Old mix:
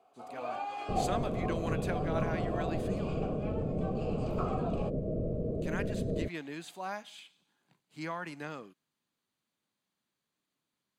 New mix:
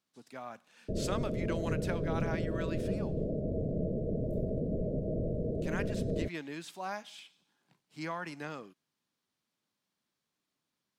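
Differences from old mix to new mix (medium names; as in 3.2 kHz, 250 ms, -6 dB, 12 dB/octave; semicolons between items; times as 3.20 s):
first sound: muted; master: remove band-stop 5.4 kHz, Q 6.1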